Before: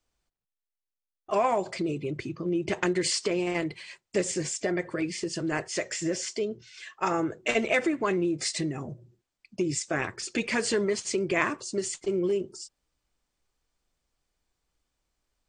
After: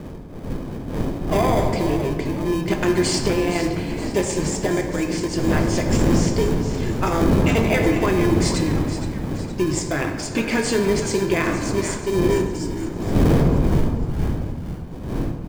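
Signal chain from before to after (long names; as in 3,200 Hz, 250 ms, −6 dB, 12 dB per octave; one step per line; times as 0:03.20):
wind on the microphone 330 Hz −30 dBFS
notch filter 1,900 Hz, Q 16
in parallel at −6.5 dB: decimation without filtering 32×
on the sum: echo with shifted repeats 468 ms, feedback 51%, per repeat −74 Hz, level −11.5 dB
on a send at −4 dB: convolution reverb RT60 1.9 s, pre-delay 5 ms
on the sum: boost into a limiter +10 dB
level −7 dB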